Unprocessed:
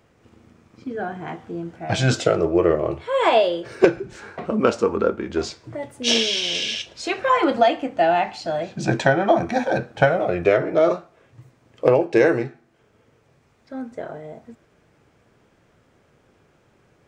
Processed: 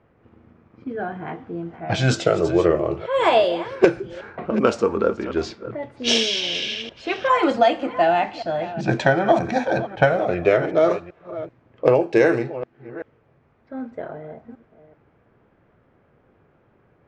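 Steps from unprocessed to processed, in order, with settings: chunks repeated in reverse 383 ms, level -14 dB; level-controlled noise filter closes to 1.8 kHz, open at -13 dBFS

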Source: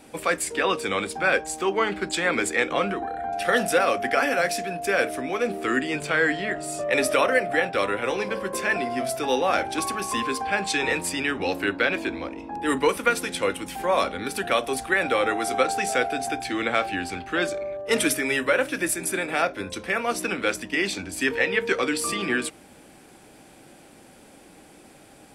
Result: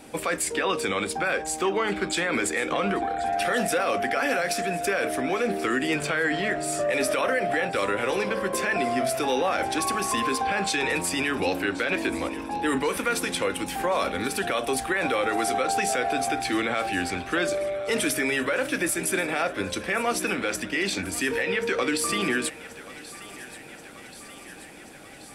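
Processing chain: peak limiter -19 dBFS, peak gain reduction 10.5 dB; on a send: thinning echo 1082 ms, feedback 73%, high-pass 610 Hz, level -16.5 dB; on the sum: trim +3 dB

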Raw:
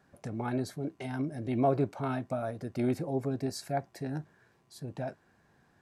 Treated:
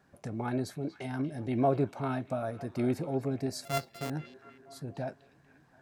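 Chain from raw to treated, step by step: 3.65–4.10 s: sorted samples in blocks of 64 samples; repeats whose band climbs or falls 239 ms, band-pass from 3.4 kHz, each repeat -0.7 oct, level -11 dB

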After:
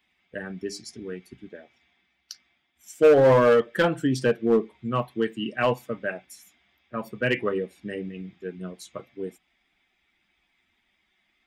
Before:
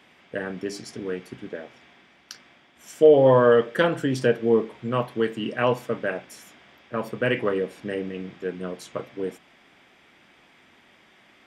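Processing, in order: expander on every frequency bin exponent 1.5; in parallel at -5 dB: wavefolder -17.5 dBFS; on the sum: trim -1 dB

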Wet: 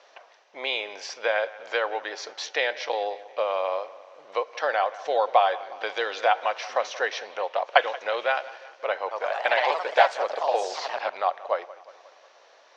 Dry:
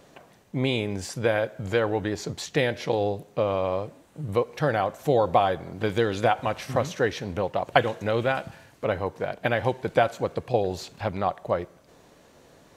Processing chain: elliptic low-pass 5.8 kHz, stop band 60 dB; 9.00–11.23 s: ever faster or slower copies 108 ms, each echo +2 st, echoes 3; high-pass 570 Hz 24 dB/octave; bucket-brigade echo 179 ms, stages 4096, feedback 58%, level -18.5 dB; trim +3 dB

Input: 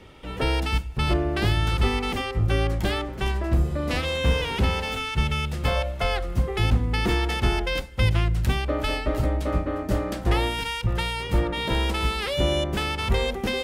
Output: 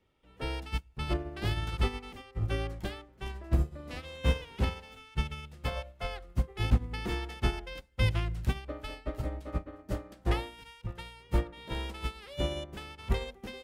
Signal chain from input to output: 10.40–10.99 s: hum notches 60/120 Hz; upward expansion 2.5:1, over -31 dBFS; trim -1.5 dB

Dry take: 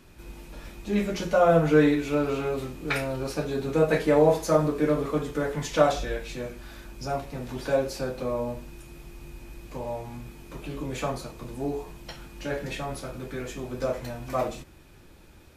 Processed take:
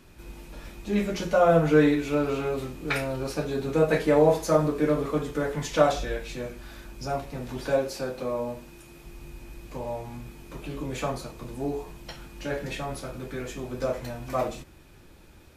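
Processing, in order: 7.78–9.05 s: bass shelf 110 Hz -9.5 dB

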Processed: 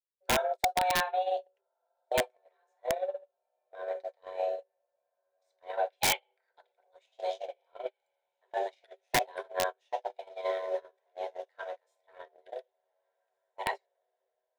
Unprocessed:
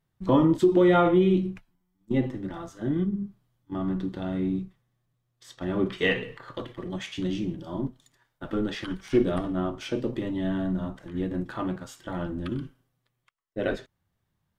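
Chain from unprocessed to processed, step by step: compression 16:1, threshold -24 dBFS, peak gain reduction 10 dB; echo that smears into a reverb 1629 ms, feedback 44%, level -14.5 dB; frequency shift +370 Hz; hum notches 60/120/180/240/300/360/420/480/540 Hz; dynamic bell 780 Hz, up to -4 dB, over -35 dBFS, Q 0.86; gate -30 dBFS, range -40 dB; peaking EQ 200 Hz -10 dB 0.63 oct; integer overflow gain 24.5 dB; band-stop 1.2 kHz, Q 6.1; trim +6 dB

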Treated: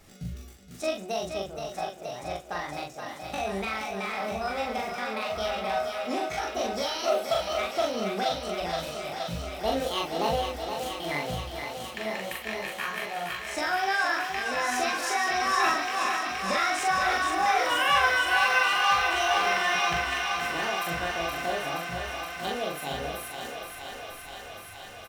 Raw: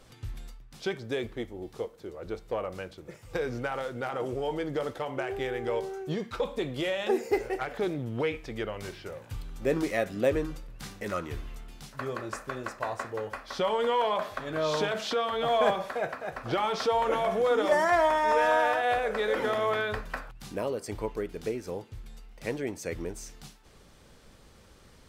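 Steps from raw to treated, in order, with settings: peaking EQ 570 Hz -12 dB 0.26 oct; de-hum 306.3 Hz, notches 10; pitch shift +8.5 st; doubling 41 ms -2 dB; thinning echo 472 ms, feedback 82%, high-pass 310 Hz, level -6 dB

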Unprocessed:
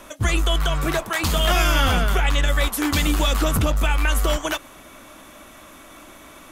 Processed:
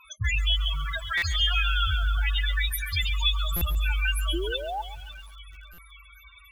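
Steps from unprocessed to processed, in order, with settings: amplifier tone stack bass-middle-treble 10-0-10; echo whose repeats swap between lows and highs 275 ms, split 1.1 kHz, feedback 71%, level -14 dB; painted sound rise, 4.33–4.82 s, 320–890 Hz -30 dBFS; high-pass 58 Hz 12 dB/octave; loudest bins only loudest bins 8; peaking EQ 560 Hz -12 dB 1.3 oct; in parallel at -3 dB: compression 5:1, threshold -40 dBFS, peak gain reduction 14 dB; on the sum: buffer glitch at 1.17/3.56/5.73 s, samples 256, times 8; bit-crushed delay 137 ms, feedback 35%, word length 8-bit, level -13 dB; trim +4 dB

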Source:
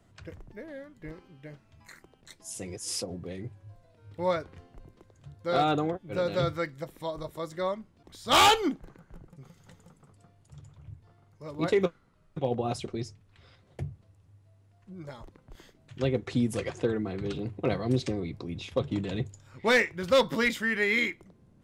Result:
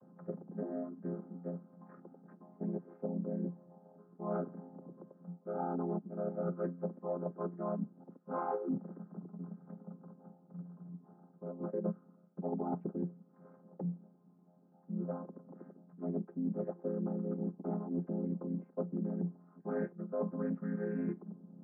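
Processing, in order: vocoder on a held chord minor triad, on F3; steep low-pass 1.3 kHz 36 dB/octave; reverse; compression 12:1, threshold -38 dBFS, peak gain reduction 22 dB; reverse; trim +5 dB

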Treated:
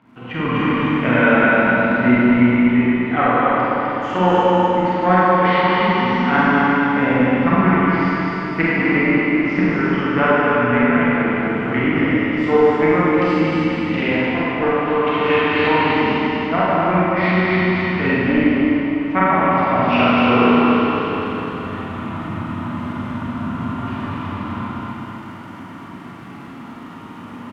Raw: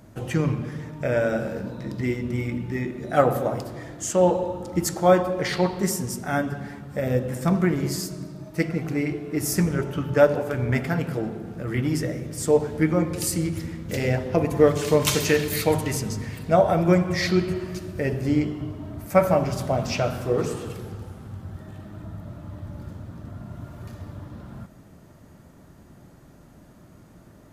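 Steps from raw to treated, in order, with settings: cabinet simulation 120–3400 Hz, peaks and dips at 250 Hz +10 dB, 570 Hz -8 dB, 1 kHz +7 dB, 1.7 kHz -8 dB, 2.9 kHz +5 dB; crackle 130 per s -51 dBFS; low-pass that closes with the level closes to 2.2 kHz, closed at -18 dBFS; on a send: feedback delay 252 ms, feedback 47%, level -4 dB; on the sum: Chebyshev shaper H 2 -10 dB, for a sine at -2.5 dBFS; level rider; peaking EQ 1.7 kHz +12.5 dB 1.7 oct; Schroeder reverb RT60 2.6 s, combs from 33 ms, DRR -7.5 dB; trim -9 dB

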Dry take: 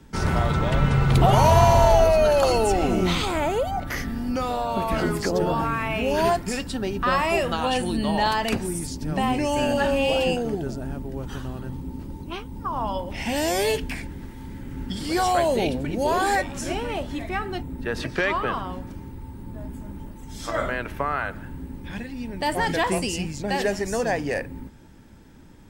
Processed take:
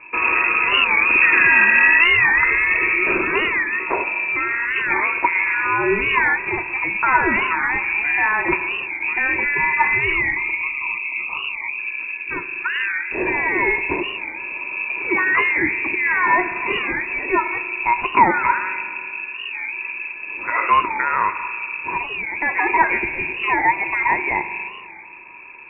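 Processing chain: in parallel at +1.5 dB: compression, threshold -31 dBFS, peak gain reduction 18 dB; on the sum: time-frequency box 10.15–11.79 s, 600–1300 Hz -22 dB; spring tank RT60 2.2 s, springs 34 ms, chirp 75 ms, DRR 11 dB; frequency inversion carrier 2.6 kHz; small resonant body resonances 360/960 Hz, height 18 dB, ringing for 45 ms; warped record 45 rpm, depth 160 cents; trim -1 dB

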